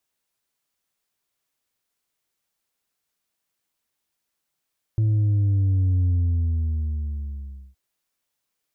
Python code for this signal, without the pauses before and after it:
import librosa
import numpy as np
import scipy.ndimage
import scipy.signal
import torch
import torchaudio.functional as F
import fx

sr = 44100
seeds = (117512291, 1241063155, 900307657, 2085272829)

y = fx.sub_drop(sr, level_db=-17.5, start_hz=110.0, length_s=2.77, drive_db=3.0, fade_s=1.7, end_hz=65.0)